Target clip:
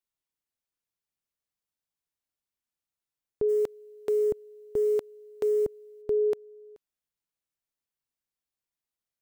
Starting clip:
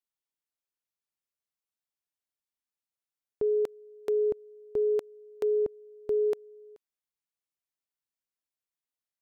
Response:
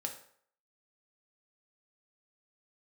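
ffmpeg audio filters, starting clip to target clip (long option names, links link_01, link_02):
-filter_complex "[0:a]asplit=3[link_01][link_02][link_03];[link_01]afade=type=out:start_time=3.48:duration=0.02[link_04];[link_02]acrusher=bits=8:mode=log:mix=0:aa=0.000001,afade=type=in:start_time=3.48:duration=0.02,afade=type=out:start_time=6.01:duration=0.02[link_05];[link_03]afade=type=in:start_time=6.01:duration=0.02[link_06];[link_04][link_05][link_06]amix=inputs=3:normalize=0,lowshelf=frequency=210:gain=7"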